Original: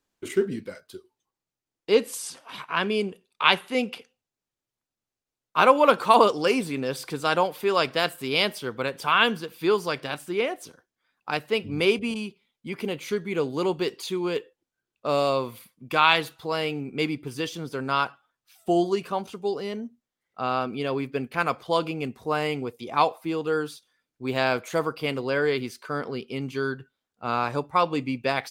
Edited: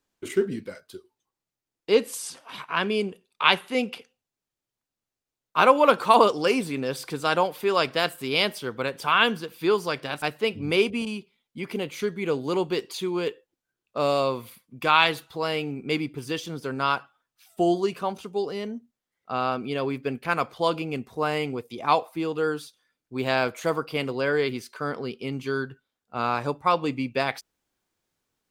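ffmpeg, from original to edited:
-filter_complex "[0:a]asplit=2[s0][s1];[s0]atrim=end=10.222[s2];[s1]atrim=start=11.308[s3];[s2][s3]acrossfade=d=0.004:c1=hsin:c2=hsin"

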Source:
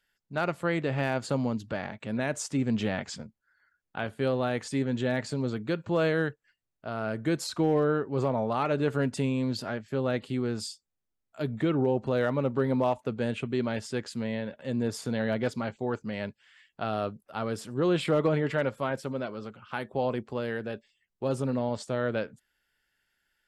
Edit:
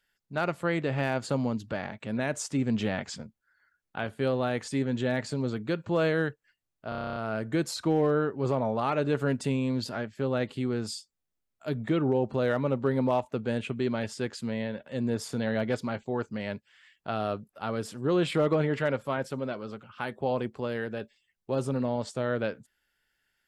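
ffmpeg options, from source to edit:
-filter_complex "[0:a]asplit=10[s0][s1][s2][s3][s4][s5][s6][s7][s8][s9];[s0]atrim=end=6.922[s10];[s1]atrim=start=6.888:end=6.922[s11];[s2]atrim=start=6.888:end=6.922[s12];[s3]atrim=start=6.888:end=6.922[s13];[s4]atrim=start=6.888:end=6.922[s14];[s5]atrim=start=6.888:end=6.922[s15];[s6]atrim=start=6.888:end=6.922[s16];[s7]atrim=start=6.888:end=6.922[s17];[s8]atrim=start=6.888:end=6.922[s18];[s9]atrim=start=6.888[s19];[s10][s11]acrossfade=d=0.004:c1=hsin:c2=hsin[s20];[s20][s12]acrossfade=d=0.004:c1=hsin:c2=hsin[s21];[s21][s13]acrossfade=d=0.004:c1=hsin:c2=hsin[s22];[s22][s14]acrossfade=d=0.004:c1=hsin:c2=hsin[s23];[s23][s15]acrossfade=d=0.004:c1=hsin:c2=hsin[s24];[s24][s16]acrossfade=d=0.004:c1=hsin:c2=hsin[s25];[s25][s17]acrossfade=d=0.004:c1=hsin:c2=hsin[s26];[s26][s18]acrossfade=d=0.004:c1=hsin:c2=hsin[s27];[s27][s19]acrossfade=d=0.004:c1=hsin:c2=hsin"

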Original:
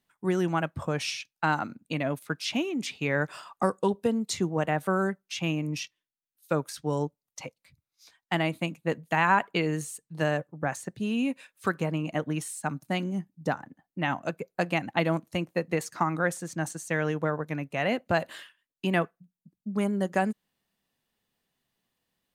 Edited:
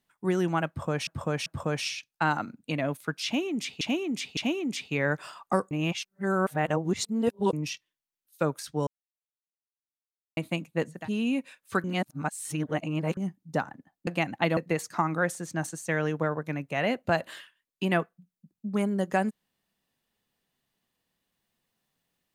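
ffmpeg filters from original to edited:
-filter_complex "[0:a]asplit=14[s0][s1][s2][s3][s4][s5][s6][s7][s8][s9][s10][s11][s12][s13];[s0]atrim=end=1.072[s14];[s1]atrim=start=0.678:end=1.072[s15];[s2]atrim=start=0.678:end=3.032[s16];[s3]atrim=start=2.468:end=3.032[s17];[s4]atrim=start=2.468:end=3.812[s18];[s5]atrim=start=3.808:end=5.632,asetpts=PTS-STARTPTS,areverse[s19];[s6]atrim=start=5.628:end=6.97,asetpts=PTS-STARTPTS,afade=t=out:st=1.338:d=0.004:c=hsin[s20];[s7]atrim=start=6.97:end=8.47,asetpts=PTS-STARTPTS,volume=0[s21];[s8]atrim=start=8.47:end=9.19,asetpts=PTS-STARTPTS,afade=t=in:d=0.004:c=hsin[s22];[s9]atrim=start=10.77:end=11.762[s23];[s10]atrim=start=11.758:end=13.092,asetpts=PTS-STARTPTS,areverse[s24];[s11]atrim=start=13.088:end=13.992[s25];[s12]atrim=start=14.618:end=15.122[s26];[s13]atrim=start=15.588[s27];[s14][s15]acrossfade=d=0.004:c1=hsin:c2=hsin[s28];[s28][s16]acrossfade=d=0.004:c1=hsin:c2=hsin[s29];[s29][s17]acrossfade=d=0.004:c1=hsin:c2=hsin[s30];[s30][s18]acrossfade=d=0.004:c1=hsin:c2=hsin[s31];[s31][s19]acrossfade=d=0.004:c1=hsin:c2=hsin[s32];[s20][s21][s22]concat=n=3:v=0:a=1[s33];[s32][s33]acrossfade=d=0.004:c1=hsin:c2=hsin[s34];[s34][s23]acrossfade=d=0.24:c1=tri:c2=tri[s35];[s35][s24]acrossfade=d=0.004:c1=hsin:c2=hsin[s36];[s36][s25]acrossfade=d=0.004:c1=hsin:c2=hsin[s37];[s37][s26]acrossfade=d=0.004:c1=hsin:c2=hsin[s38];[s38][s27]acrossfade=d=0.004:c1=hsin:c2=hsin"

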